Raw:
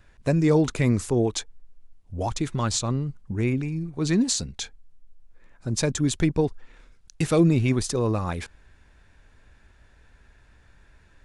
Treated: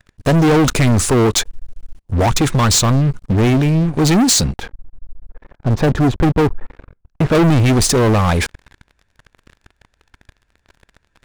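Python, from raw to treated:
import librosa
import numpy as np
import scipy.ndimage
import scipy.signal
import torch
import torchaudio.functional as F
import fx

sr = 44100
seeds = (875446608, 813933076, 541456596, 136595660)

y = fx.lowpass(x, sr, hz=1200.0, slope=12, at=(4.56, 7.35))
y = fx.leveller(y, sr, passes=5)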